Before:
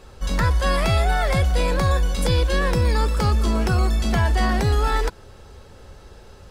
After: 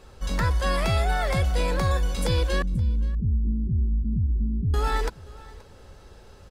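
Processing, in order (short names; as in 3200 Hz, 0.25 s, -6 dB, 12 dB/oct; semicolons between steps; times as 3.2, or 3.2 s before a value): 2.62–4.74 inverse Chebyshev low-pass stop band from 640 Hz, stop band 50 dB; echo 0.527 s -21.5 dB; gain -4 dB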